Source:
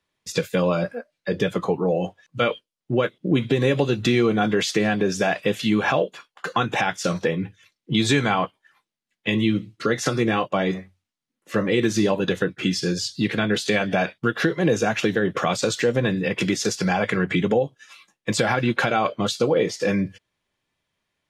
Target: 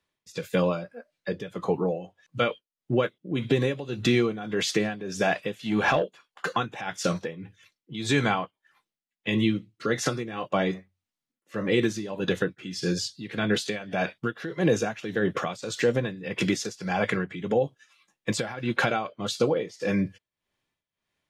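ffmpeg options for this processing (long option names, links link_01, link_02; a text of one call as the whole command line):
ffmpeg -i in.wav -filter_complex "[0:a]asettb=1/sr,asplit=3[link_01][link_02][link_03];[link_01]atrim=end=5.614[link_04];[link_02]atrim=start=5.61:end=6.56,asetpts=PTS-STARTPTS,afade=type=in:duration=0.004:curve=qsin,afade=type=out:start_time=0.946:duration=0.004:curve=qsin,aeval=exprs='0.398*(cos(1*acos(clip(val(0)/0.398,-1,1)))-cos(1*PI/2))+0.0251*(cos(5*acos(clip(val(0)/0.398,-1,1)))-cos(5*PI/2))':channel_layout=same[link_05];[link_03]atrim=start=6.556[link_06];[link_04][link_05]acrossfade=duration=0.004:curve1=hsin:curve2=qsin[link_07];[link_07][link_06]acrossfade=duration=0.004:curve1=qsin:curve2=hsin,tremolo=f=1.7:d=0.8,volume=-2dB" out.wav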